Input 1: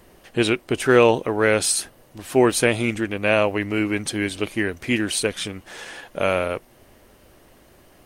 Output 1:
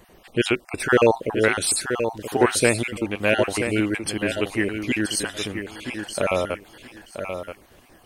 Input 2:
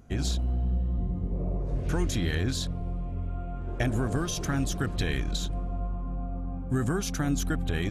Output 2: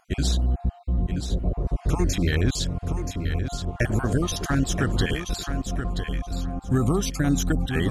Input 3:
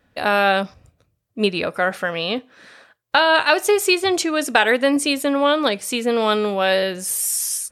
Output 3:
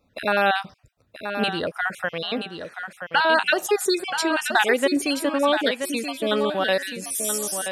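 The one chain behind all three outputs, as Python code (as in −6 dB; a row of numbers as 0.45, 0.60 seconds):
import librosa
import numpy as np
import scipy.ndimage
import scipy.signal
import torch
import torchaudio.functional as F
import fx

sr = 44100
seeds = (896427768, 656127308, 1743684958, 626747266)

y = fx.spec_dropout(x, sr, seeds[0], share_pct=33)
y = fx.echo_feedback(y, sr, ms=978, feedback_pct=19, wet_db=-8)
y = y * 10.0 ** (-24 / 20.0) / np.sqrt(np.mean(np.square(y)))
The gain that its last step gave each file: 0.0, +5.5, −3.0 decibels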